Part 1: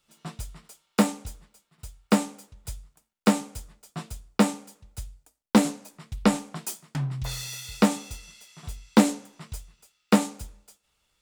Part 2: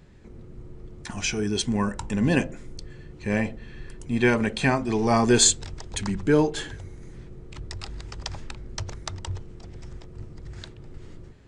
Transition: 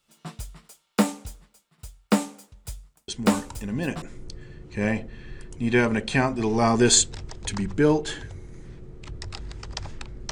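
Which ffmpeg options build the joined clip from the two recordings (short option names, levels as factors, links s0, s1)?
-filter_complex "[1:a]asplit=2[s0][s1];[0:a]apad=whole_dur=10.31,atrim=end=10.31,atrim=end=4.022[s2];[s1]atrim=start=2.508:end=8.8[s3];[s0]atrim=start=1.57:end=2.51,asetpts=PTS-STARTPTS,volume=0.473,afade=t=in:d=0.004:c=hsin,afade=t=out:st=0.936:d=0.004:c=hsin,adelay=3080[s4];[s2][s3]acrossfade=d=0.004:c1=hsin:c2=hsin[s5];[s5][s4]amix=inputs=2:normalize=0"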